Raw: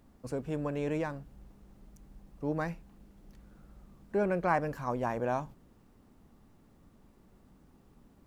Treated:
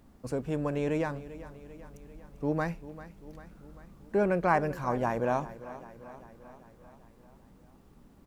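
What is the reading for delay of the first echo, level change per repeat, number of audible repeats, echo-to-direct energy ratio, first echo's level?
394 ms, -4.5 dB, 5, -14.0 dB, -16.0 dB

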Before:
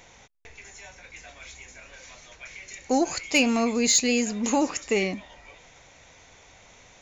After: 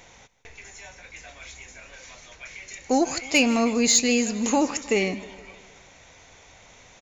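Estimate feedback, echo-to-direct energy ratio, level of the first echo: 56%, -17.0 dB, -18.5 dB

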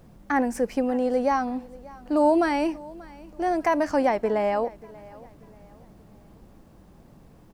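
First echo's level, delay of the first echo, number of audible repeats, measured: -21.5 dB, 586 ms, 2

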